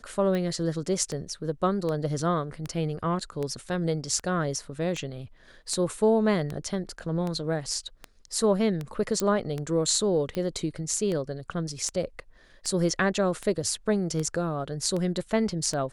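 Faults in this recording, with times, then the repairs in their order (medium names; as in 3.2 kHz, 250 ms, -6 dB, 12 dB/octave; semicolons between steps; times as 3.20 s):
tick 78 rpm -19 dBFS
9.20 s: pop -12 dBFS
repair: de-click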